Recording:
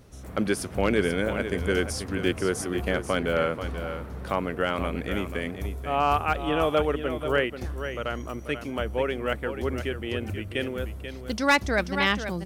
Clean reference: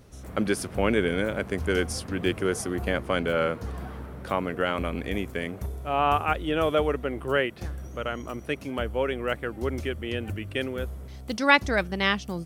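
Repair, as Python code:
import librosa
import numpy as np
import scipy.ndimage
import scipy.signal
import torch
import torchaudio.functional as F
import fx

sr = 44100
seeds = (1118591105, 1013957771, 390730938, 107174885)

y = fx.fix_declip(x, sr, threshold_db=-12.0)
y = fx.fix_echo_inverse(y, sr, delay_ms=486, level_db=-9.5)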